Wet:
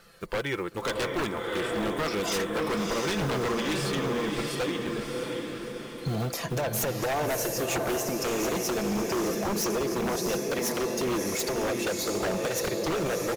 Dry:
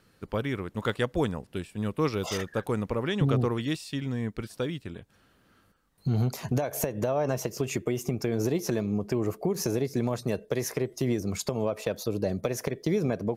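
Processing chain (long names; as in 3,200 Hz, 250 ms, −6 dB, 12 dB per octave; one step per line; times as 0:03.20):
one scale factor per block 7 bits
parametric band 92 Hz −12.5 dB 2.4 octaves
comb filter 5.9 ms, depth 37%
in parallel at +2 dB: downward compressor, threshold −42 dBFS, peak gain reduction 18 dB
on the sum: flanger 0.16 Hz, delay 1.5 ms, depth 3.7 ms, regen −38%
feedback delay with all-pass diffusion 666 ms, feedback 52%, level −4 dB
wave folding −28.5 dBFS
level +6 dB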